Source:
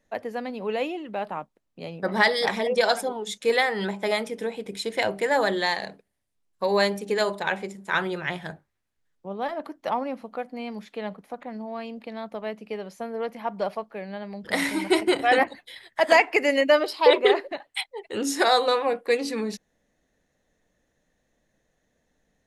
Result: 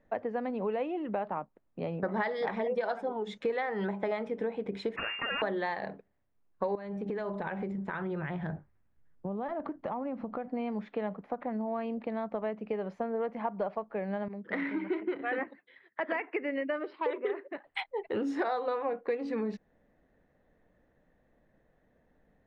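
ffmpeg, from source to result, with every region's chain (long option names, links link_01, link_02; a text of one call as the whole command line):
ffmpeg -i in.wav -filter_complex "[0:a]asettb=1/sr,asplit=3[link_01][link_02][link_03];[link_01]atrim=end=4.964[link_04];[link_02]atrim=start=4.96:end=5.42,asetpts=PTS-STARTPTS,afade=type=in:duration=0.004:curve=qsin,afade=type=out:start_time=0.456:duration=0.004:curve=qsin,aeval=exprs='abs(val(0))':channel_layout=same,acompressor=threshold=-26dB:ratio=2:attack=3.2:release=140:knee=1:detection=peak,lowpass=frequency=2400:width_type=q:width=0.5098,lowpass=frequency=2400:width_type=q:width=0.6013,lowpass=frequency=2400:width_type=q:width=0.9,lowpass=frequency=2400:width_type=q:width=2.563,afreqshift=-2800[link_05];[link_03]atrim=start=5.416[link_06];[link_04][link_05]acrossfade=duration=0.004:curve1=hsin:curve2=qsin[link_07];[link_07][link_06]acrossfade=duration=0.004:curve1=qsin:curve2=hsin,asettb=1/sr,asplit=3[link_08][link_09][link_10];[link_08]atrim=end=6.754[link_11];[link_09]atrim=start=6.75:end=10.48,asetpts=PTS-STARTPTS,afade=type=in:duration=0.004:curve=qsin,afade=type=out:start_time=3.726:duration=0.004:curve=qsin,bass=frequency=250:gain=8,treble=frequency=4000:gain=-2,acompressor=threshold=-35dB:ratio=5:attack=3.2:release=140:knee=1:detection=peak[link_12];[link_10]atrim=start=10.476[link_13];[link_11][link_12]acrossfade=duration=0.004:curve1=hsin:curve2=qsin[link_14];[link_14][link_13]acrossfade=duration=0.004:curve1=qsin:curve2=hsin,asettb=1/sr,asplit=3[link_15][link_16][link_17];[link_15]atrim=end=14.284[link_18];[link_16]atrim=start=14.28:end=17.64,asetpts=PTS-STARTPTS,afade=type=in:duration=0.004:curve=qsin,afade=type=out:start_time=3.356:duration=0.004:curve=qsin,agate=range=-6dB:threshold=-40dB:ratio=16:release=100:detection=peak,highpass=270,lowpass=2200,equalizer=frequency=750:width_type=o:width=1.3:gain=-14[link_19];[link_17]atrim=start=17.636[link_20];[link_18][link_19]acrossfade=duration=0.004:curve1=hsin:curve2=qsin[link_21];[link_21][link_20]acrossfade=duration=0.004:curve1=qsin:curve2=hsin,lowpass=1600,acompressor=threshold=-34dB:ratio=5,volume=4dB" out.wav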